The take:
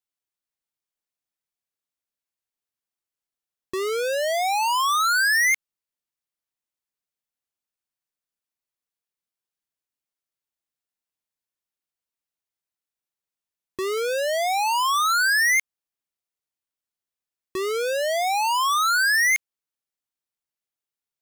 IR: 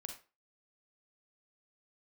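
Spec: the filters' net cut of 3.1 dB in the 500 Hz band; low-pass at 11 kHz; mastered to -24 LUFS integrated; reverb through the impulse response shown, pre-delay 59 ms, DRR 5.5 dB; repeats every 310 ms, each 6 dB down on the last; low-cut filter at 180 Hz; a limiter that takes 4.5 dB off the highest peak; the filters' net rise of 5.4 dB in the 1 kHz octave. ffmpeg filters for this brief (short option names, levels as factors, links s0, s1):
-filter_complex "[0:a]highpass=180,lowpass=11000,equalizer=f=500:t=o:g=-7,equalizer=f=1000:t=o:g=8.5,alimiter=limit=0.158:level=0:latency=1,aecho=1:1:310|620|930|1240|1550|1860:0.501|0.251|0.125|0.0626|0.0313|0.0157,asplit=2[s0][s1];[1:a]atrim=start_sample=2205,adelay=59[s2];[s1][s2]afir=irnorm=-1:irlink=0,volume=0.794[s3];[s0][s3]amix=inputs=2:normalize=0,volume=0.531"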